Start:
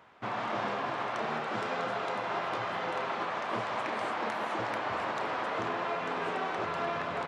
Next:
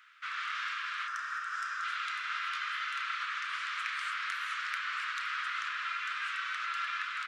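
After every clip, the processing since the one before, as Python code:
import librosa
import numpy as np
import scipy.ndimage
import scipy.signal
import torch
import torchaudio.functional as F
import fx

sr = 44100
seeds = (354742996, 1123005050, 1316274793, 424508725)

y = scipy.signal.sosfilt(scipy.signal.ellip(4, 1.0, 40, 1300.0, 'highpass', fs=sr, output='sos'), x)
y = fx.spec_box(y, sr, start_s=1.07, length_s=0.77, low_hz=1900.0, high_hz=4800.0, gain_db=-10)
y = y * 10.0 ** (4.0 / 20.0)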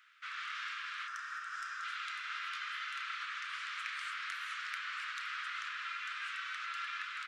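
y = fx.peak_eq(x, sr, hz=490.0, db=-9.5, octaves=2.1)
y = y * 10.0 ** (-3.0 / 20.0)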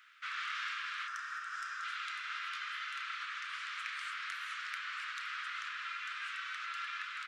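y = fx.rider(x, sr, range_db=10, speed_s=2.0)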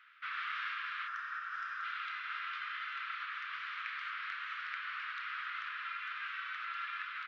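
y = scipy.ndimage.gaussian_filter1d(x, 2.4, mode='constant')
y = y * 10.0 ** (2.0 / 20.0)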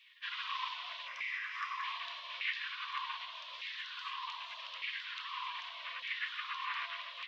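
y = fx.spec_gate(x, sr, threshold_db=-15, keep='weak')
y = fx.echo_wet_bandpass(y, sr, ms=276, feedback_pct=82, hz=590.0, wet_db=-8)
y = fx.filter_lfo_highpass(y, sr, shape='saw_down', hz=0.83, low_hz=470.0, high_hz=2200.0, q=5.0)
y = y * 10.0 ** (7.5 / 20.0)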